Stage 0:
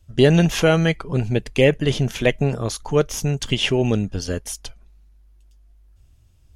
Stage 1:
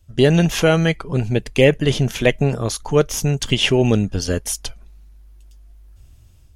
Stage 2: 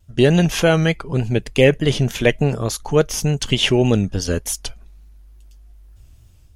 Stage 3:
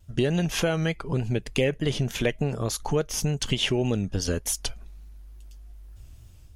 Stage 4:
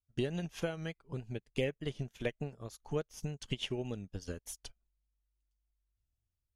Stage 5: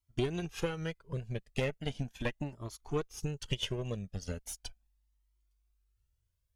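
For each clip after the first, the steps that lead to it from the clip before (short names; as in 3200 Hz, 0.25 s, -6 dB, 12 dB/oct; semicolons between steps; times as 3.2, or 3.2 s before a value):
high shelf 9600 Hz +4 dB; AGC gain up to 7 dB
vibrato 3.4 Hz 63 cents
compressor 3:1, threshold -24 dBFS, peak gain reduction 12 dB
upward expander 2.5:1, over -40 dBFS; gain -8 dB
one diode to ground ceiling -36.5 dBFS; cascading flanger rising 0.38 Hz; gain +8.5 dB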